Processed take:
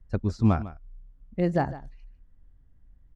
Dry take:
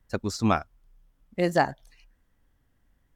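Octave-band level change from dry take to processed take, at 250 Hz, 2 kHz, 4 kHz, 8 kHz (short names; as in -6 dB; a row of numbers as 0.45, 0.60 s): +2.0 dB, -8.5 dB, -12.0 dB, under -15 dB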